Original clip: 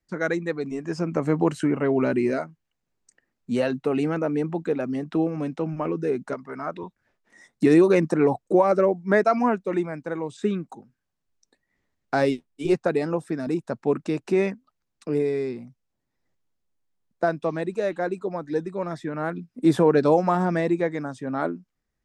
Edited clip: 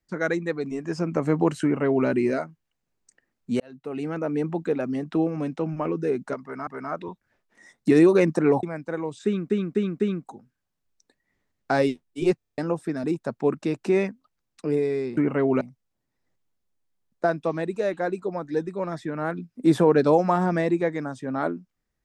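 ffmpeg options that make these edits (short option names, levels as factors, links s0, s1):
-filter_complex "[0:a]asplit=16[s0][s1][s2][s3][s4][s5][s6][s7][s8][s9][s10][s11][s12][s13][s14][s15];[s0]atrim=end=3.6,asetpts=PTS-STARTPTS,afade=t=out:st=3.596:d=0.004:c=hsin[s16];[s1]atrim=start=3.6:end=6.672,asetpts=PTS-STARTPTS,afade=t=in:d=0.86[s17];[s2]atrim=start=6.418:end=8.382[s18];[s3]atrim=start=9.808:end=10.682[s19];[s4]atrim=start=10.428:end=10.682[s20];[s5]atrim=start=10.428:end=10.682[s21];[s6]atrim=start=10.428:end=12.832[s22];[s7]atrim=start=12.798:end=12.832[s23];[s8]atrim=start=12.798:end=12.832[s24];[s9]atrim=start=12.798:end=12.832[s25];[s10]atrim=start=12.798:end=12.832[s26];[s11]atrim=start=12.798:end=12.832[s27];[s12]atrim=start=12.798:end=12.832[s28];[s13]atrim=start=13.008:end=15.602[s29];[s14]atrim=start=1.628:end=2.072[s30];[s15]atrim=start=15.598[s31];[s16][s17]concat=n=2:v=0:a=1[s32];[s32][s18]acrossfade=d=0.004:c1=hsin:c2=hsin[s33];[s33][s19]acrossfade=d=0.004:c1=hsin:c2=hsin[s34];[s34][s20]acrossfade=d=0.004:c1=hsin:c2=hsin[s35];[s35][s21]acrossfade=d=0.004:c1=hsin:c2=hsin[s36];[s36][s22]acrossfade=d=0.004:c1=hsin:c2=hsin[s37];[s37][s23]acrossfade=d=0.004:c1=hsin:c2=hsin[s38];[s38][s24]acrossfade=d=0.004:c1=hsin:c2=hsin[s39];[s39][s25]acrossfade=d=0.004:c1=hsin:c2=hsin[s40];[s40][s26]acrossfade=d=0.004:c1=hsin:c2=hsin[s41];[s41][s27]acrossfade=d=0.004:c1=hsin:c2=hsin[s42];[s42][s28]acrossfade=d=0.004:c1=hsin:c2=hsin[s43];[s43][s29]acrossfade=d=0.004:c1=hsin:c2=hsin[s44];[s44][s30]acrossfade=d=0.004:c1=hsin:c2=hsin[s45];[s45][s31]acrossfade=d=0.004:c1=hsin:c2=hsin"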